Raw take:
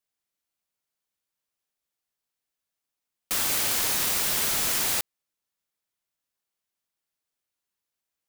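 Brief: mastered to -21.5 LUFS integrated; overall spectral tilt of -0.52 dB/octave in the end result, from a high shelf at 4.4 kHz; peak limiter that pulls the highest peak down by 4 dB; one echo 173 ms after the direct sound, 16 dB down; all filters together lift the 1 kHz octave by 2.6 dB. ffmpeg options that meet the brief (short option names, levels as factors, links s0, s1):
-af "equalizer=f=1000:t=o:g=3.5,highshelf=f=4400:g=-3,alimiter=limit=0.119:level=0:latency=1,aecho=1:1:173:0.158,volume=1.78"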